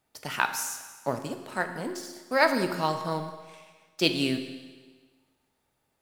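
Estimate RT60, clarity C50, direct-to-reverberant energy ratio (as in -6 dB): 1.4 s, 8.5 dB, 6.5 dB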